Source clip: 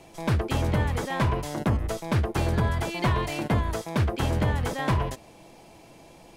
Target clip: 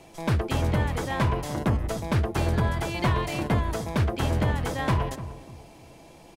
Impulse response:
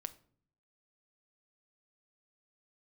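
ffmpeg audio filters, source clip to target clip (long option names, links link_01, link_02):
-filter_complex "[0:a]asplit=2[link_01][link_02];[link_02]adelay=297,lowpass=frequency=820:poles=1,volume=-12dB,asplit=2[link_03][link_04];[link_04]adelay=297,lowpass=frequency=820:poles=1,volume=0.36,asplit=2[link_05][link_06];[link_06]adelay=297,lowpass=frequency=820:poles=1,volume=0.36,asplit=2[link_07][link_08];[link_08]adelay=297,lowpass=frequency=820:poles=1,volume=0.36[link_09];[link_01][link_03][link_05][link_07][link_09]amix=inputs=5:normalize=0"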